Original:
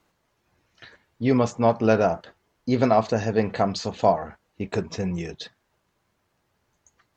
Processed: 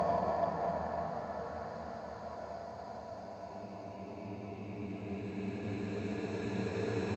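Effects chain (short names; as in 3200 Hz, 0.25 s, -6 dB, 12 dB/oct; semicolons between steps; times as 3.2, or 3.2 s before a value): feedback echo 0.296 s, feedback 45%, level -19 dB; Paulstretch 15×, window 0.50 s, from 4.21; added harmonics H 7 -35 dB, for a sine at -15 dBFS; gain -6 dB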